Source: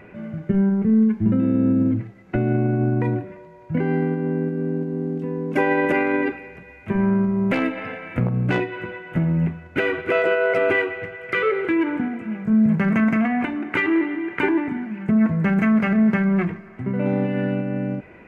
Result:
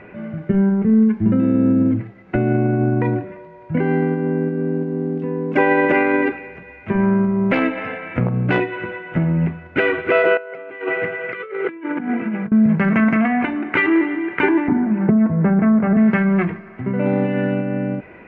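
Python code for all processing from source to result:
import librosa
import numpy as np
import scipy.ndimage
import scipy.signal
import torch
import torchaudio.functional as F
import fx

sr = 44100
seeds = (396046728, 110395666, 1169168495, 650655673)

y = fx.chain(x, sr, fx.over_compress(threshold_db=-27.0, ratio=-0.5),
    fx.highpass(hz=130.0, slope=24),
    fx.air_absorb(metres=130.0), at=(10.37, 12.52))
y = fx.chain(y, sr, fx.lowpass(hz=1000.0, slope=12),
    fx.band_squash(depth_pct=100), at=(14.68, 15.97))
y = scipy.signal.sosfilt(scipy.signal.butter(2, 3300.0, 'lowpass', fs=sr, output='sos'), y)
y = fx.low_shelf(y, sr, hz=220.0, db=-4.5)
y = F.gain(torch.from_numpy(y), 5.0).numpy()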